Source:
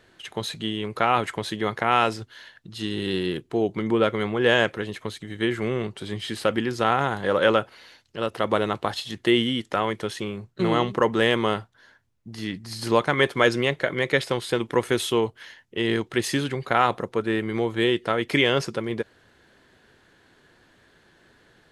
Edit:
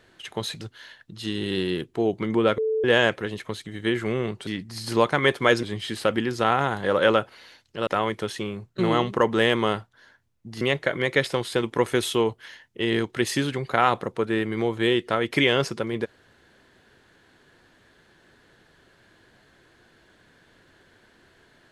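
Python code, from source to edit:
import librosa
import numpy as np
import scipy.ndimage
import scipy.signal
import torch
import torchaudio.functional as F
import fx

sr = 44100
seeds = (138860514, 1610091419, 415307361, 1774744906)

y = fx.edit(x, sr, fx.cut(start_s=0.61, length_s=1.56),
    fx.bleep(start_s=4.14, length_s=0.26, hz=439.0, db=-21.0),
    fx.cut(start_s=8.27, length_s=1.41),
    fx.move(start_s=12.42, length_s=1.16, to_s=6.03), tone=tone)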